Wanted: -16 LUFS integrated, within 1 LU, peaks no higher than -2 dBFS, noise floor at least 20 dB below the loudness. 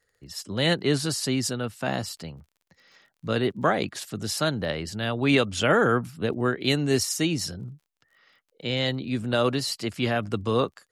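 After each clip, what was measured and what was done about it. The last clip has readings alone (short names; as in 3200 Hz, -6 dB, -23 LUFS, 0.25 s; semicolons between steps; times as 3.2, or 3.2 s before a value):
ticks 28/s; loudness -26.0 LUFS; peak -9.0 dBFS; loudness target -16.0 LUFS
-> de-click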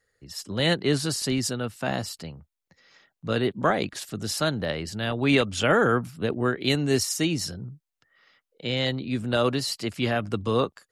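ticks 0/s; loudness -26.0 LUFS; peak -8.5 dBFS; loudness target -16.0 LUFS
-> gain +10 dB; limiter -2 dBFS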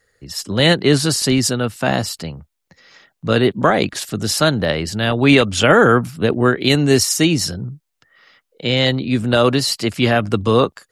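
loudness -16.0 LUFS; peak -2.0 dBFS; noise floor -75 dBFS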